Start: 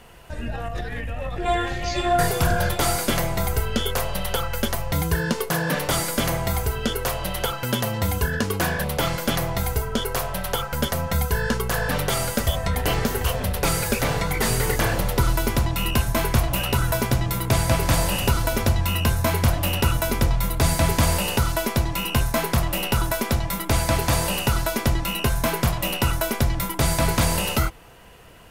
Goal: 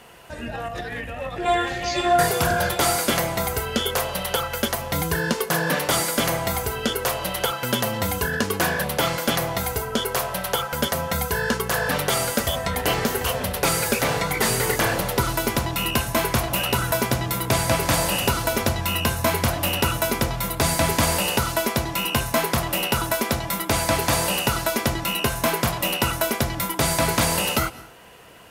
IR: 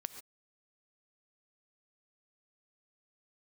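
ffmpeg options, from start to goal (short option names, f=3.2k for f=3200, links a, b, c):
-filter_complex "[0:a]highpass=f=210:p=1,asplit=2[a][b];[1:a]atrim=start_sample=2205,asetrate=28665,aresample=44100[c];[b][c]afir=irnorm=-1:irlink=0,volume=-9dB[d];[a][d]amix=inputs=2:normalize=0"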